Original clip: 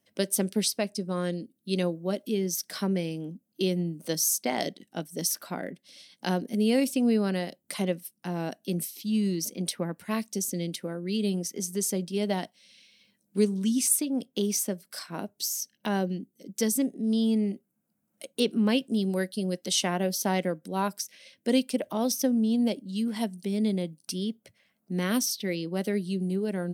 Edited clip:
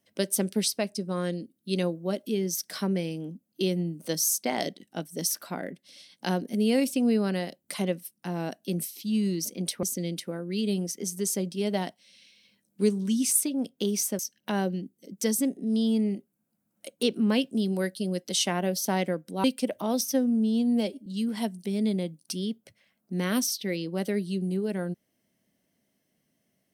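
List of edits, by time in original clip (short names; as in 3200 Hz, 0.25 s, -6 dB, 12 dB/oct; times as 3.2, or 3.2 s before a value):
9.83–10.39 cut
14.75–15.56 cut
20.81–21.55 cut
22.21–22.85 stretch 1.5×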